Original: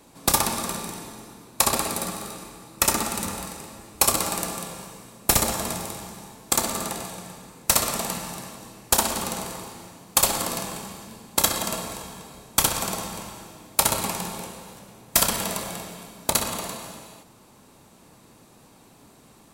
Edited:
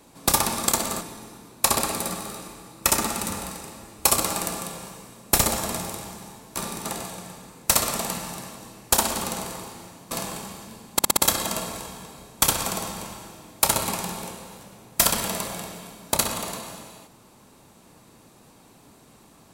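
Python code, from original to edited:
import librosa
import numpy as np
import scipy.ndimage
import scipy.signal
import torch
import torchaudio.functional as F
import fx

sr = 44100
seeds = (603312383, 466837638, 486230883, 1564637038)

y = fx.edit(x, sr, fx.swap(start_s=0.68, length_s=0.29, other_s=6.52, other_length_s=0.33),
    fx.cut(start_s=10.11, length_s=0.4),
    fx.stutter(start_s=11.33, slice_s=0.06, count=5), tone=tone)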